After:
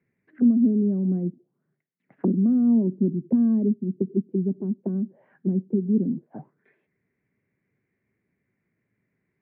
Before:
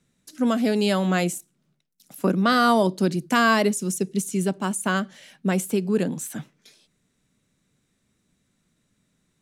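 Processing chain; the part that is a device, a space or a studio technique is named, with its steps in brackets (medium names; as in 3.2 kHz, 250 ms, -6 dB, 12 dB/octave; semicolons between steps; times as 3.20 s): envelope filter bass rig (touch-sensitive low-pass 240–2200 Hz down, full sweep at -22 dBFS; cabinet simulation 73–2100 Hz, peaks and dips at 110 Hz +6 dB, 390 Hz +9 dB, 1.3 kHz -7 dB); trim -7.5 dB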